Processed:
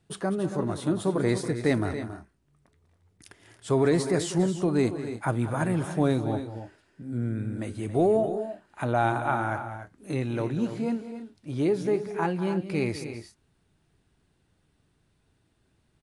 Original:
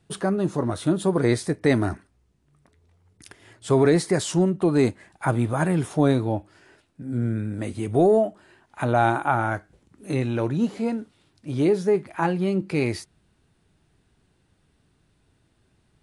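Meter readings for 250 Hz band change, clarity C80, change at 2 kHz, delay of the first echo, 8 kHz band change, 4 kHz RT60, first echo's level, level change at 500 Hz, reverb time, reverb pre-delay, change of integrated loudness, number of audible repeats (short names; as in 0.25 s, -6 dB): -4.0 dB, none, -4.0 dB, 0.195 s, -4.0 dB, none, -13.5 dB, -4.0 dB, none, none, -4.5 dB, 2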